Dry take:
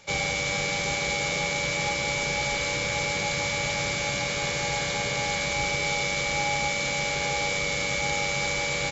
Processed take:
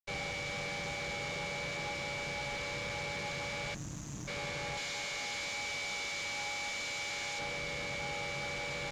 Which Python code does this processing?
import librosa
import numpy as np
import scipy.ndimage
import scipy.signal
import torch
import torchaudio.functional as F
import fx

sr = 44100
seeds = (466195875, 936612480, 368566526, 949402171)

y = fx.spec_erase(x, sr, start_s=3.74, length_s=0.54, low_hz=350.0, high_hz=5700.0)
y = fx.tilt_eq(y, sr, slope=3.5, at=(4.77, 7.39))
y = fx.quant_dither(y, sr, seeds[0], bits=6, dither='none')
y = fx.tube_stage(y, sr, drive_db=31.0, bias=0.6)
y = fx.air_absorb(y, sr, metres=92.0)
y = y * librosa.db_to_amplitude(-3.0)